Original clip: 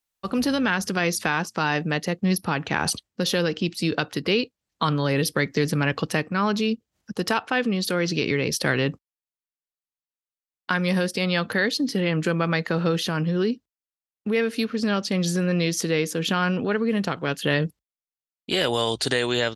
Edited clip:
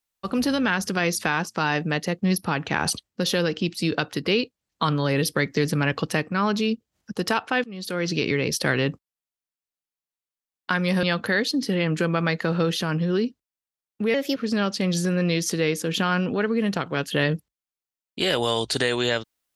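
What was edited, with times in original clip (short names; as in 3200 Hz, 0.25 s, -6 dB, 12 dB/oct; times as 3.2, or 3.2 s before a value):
7.64–8.13 fade in, from -23.5 dB
11.03–11.29 cut
14.4–14.67 speed 122%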